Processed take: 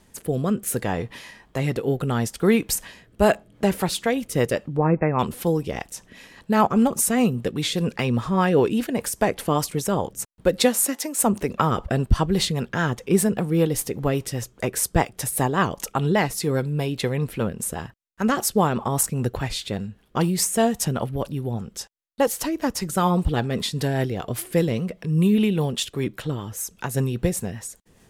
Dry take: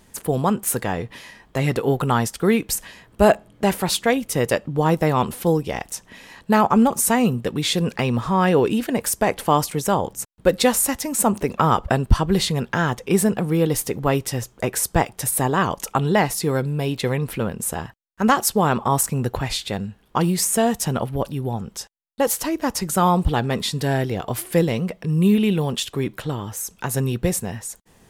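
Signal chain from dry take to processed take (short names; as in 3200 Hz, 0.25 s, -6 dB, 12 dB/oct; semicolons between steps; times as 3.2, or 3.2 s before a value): 10.61–11.22 HPF 120 Hz -> 400 Hz 24 dB/oct; rotary speaker horn 0.65 Hz, later 5 Hz, at 2.8; 4.77–5.19 brick-wall FIR low-pass 2700 Hz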